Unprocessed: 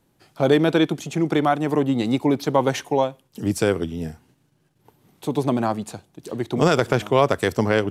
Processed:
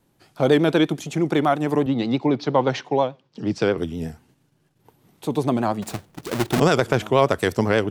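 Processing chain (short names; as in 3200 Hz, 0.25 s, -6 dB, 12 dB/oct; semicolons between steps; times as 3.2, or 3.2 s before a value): 5.82–6.6 half-waves squared off; vibrato 8.4 Hz 65 cents; 1.86–3.78 Chebyshev band-pass 120–5000 Hz, order 3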